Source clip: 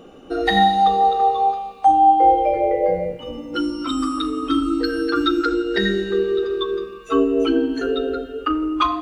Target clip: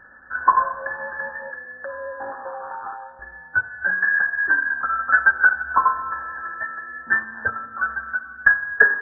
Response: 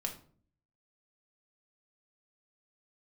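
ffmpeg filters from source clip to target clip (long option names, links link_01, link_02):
-filter_complex "[0:a]asplit=2[link_01][link_02];[link_02]asoftclip=type=tanh:threshold=-19dB,volume=-4dB[link_03];[link_01][link_03]amix=inputs=2:normalize=0,lowpass=frequency=2500:width_type=q:width=0.5098,lowpass=frequency=2500:width_type=q:width=0.6013,lowpass=frequency=2500:width_type=q:width=0.9,lowpass=frequency=2500:width_type=q:width=2.563,afreqshift=-2900,lowshelf=frequency=98:gain=-8,afftfilt=real='re*eq(mod(floor(b*sr/1024/1800),2),0)':imag='im*eq(mod(floor(b*sr/1024/1800),2),0)':win_size=1024:overlap=0.75,volume=6.5dB"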